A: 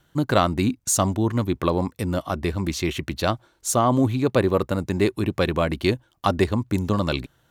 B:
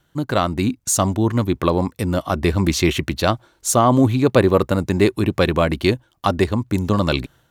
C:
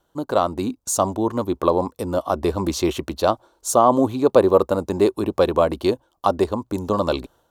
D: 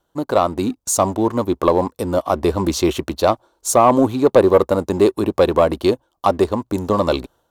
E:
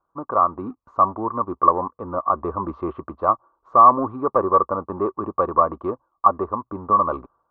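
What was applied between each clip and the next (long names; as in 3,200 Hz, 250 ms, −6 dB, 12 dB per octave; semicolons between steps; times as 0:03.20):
automatic gain control; level −1 dB
octave-band graphic EQ 125/500/1,000/2,000 Hz −10/+6/+7/−11 dB; level −4 dB
leveller curve on the samples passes 1
transistor ladder low-pass 1,200 Hz, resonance 85%; level +2 dB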